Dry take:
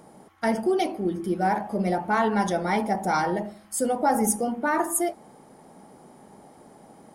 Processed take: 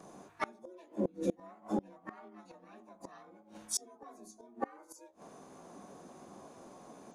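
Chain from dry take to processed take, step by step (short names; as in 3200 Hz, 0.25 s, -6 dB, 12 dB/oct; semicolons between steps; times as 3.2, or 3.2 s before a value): inharmonic rescaling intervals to 89%; harmoniser +7 st -3 dB; flipped gate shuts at -19 dBFS, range -29 dB; gain -2 dB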